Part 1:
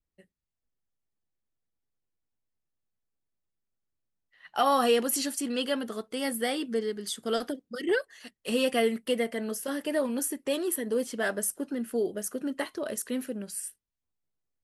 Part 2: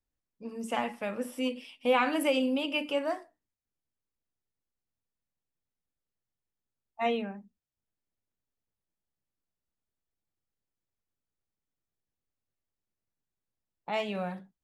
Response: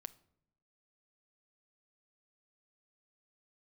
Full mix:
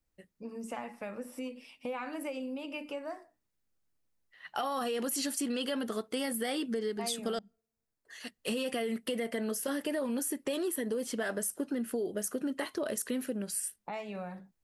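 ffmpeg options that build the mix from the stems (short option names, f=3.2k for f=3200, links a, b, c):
-filter_complex "[0:a]alimiter=limit=-23dB:level=0:latency=1:release=28,volume=2.5dB,asplit=3[a][b][c];[a]atrim=end=7.39,asetpts=PTS-STARTPTS,afade=t=out:st=7.386:d=0.004:c=hsin[d];[b]atrim=start=7.39:end=8.05,asetpts=PTS-STARTPTS,volume=0[e];[c]atrim=start=8.05,asetpts=PTS-STARTPTS,afade=t=in:d=0.004:c=hsin[f];[d][e][f]concat=n=3:v=0:a=1,asplit=2[g][h];[h]volume=-21.5dB[i];[1:a]equalizer=f=3.2k:t=o:w=0.35:g=-9,acompressor=threshold=-41dB:ratio=3,volume=1.5dB[j];[2:a]atrim=start_sample=2205[k];[i][k]afir=irnorm=-1:irlink=0[l];[g][j][l]amix=inputs=3:normalize=0,acompressor=threshold=-30dB:ratio=6"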